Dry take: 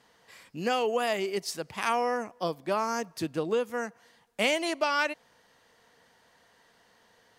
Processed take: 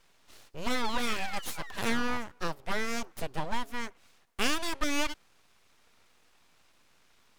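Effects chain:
sound drawn into the spectrogram fall, 0:00.84–0:02.18, 390–4,100 Hz −41 dBFS
full-wave rectification

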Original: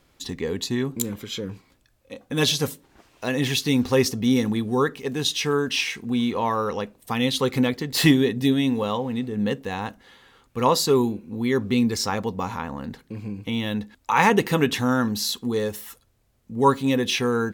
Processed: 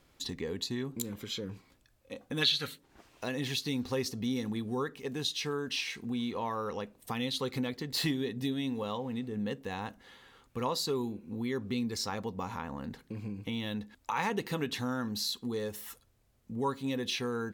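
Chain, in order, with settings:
dynamic equaliser 4,200 Hz, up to +6 dB, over −44 dBFS, Q 3.6
gain on a spectral selection 0:02.42–0:02.78, 1,200–4,600 Hz +12 dB
downward compressor 2 to 1, threshold −33 dBFS, peak gain reduction 15.5 dB
level −4 dB

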